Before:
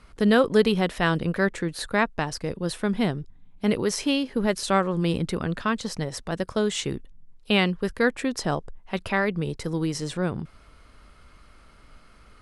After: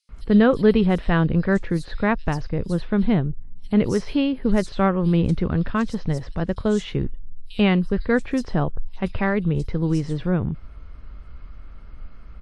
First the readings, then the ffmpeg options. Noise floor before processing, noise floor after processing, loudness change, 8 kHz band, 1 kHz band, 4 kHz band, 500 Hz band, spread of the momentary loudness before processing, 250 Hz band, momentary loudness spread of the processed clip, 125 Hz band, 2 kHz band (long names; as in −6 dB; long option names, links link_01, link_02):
−53 dBFS, −41 dBFS, +3.5 dB, can't be measured, 0.0 dB, −5.5 dB, +2.0 dB, 10 LU, +5.5 dB, 10 LU, +7.0 dB, −1.5 dB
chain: -filter_complex "[0:a]aemphasis=mode=reproduction:type=bsi,acrossover=split=4400[link_01][link_02];[link_01]adelay=90[link_03];[link_03][link_02]amix=inputs=2:normalize=0" -ar 48000 -c:a wmav2 -b:a 128k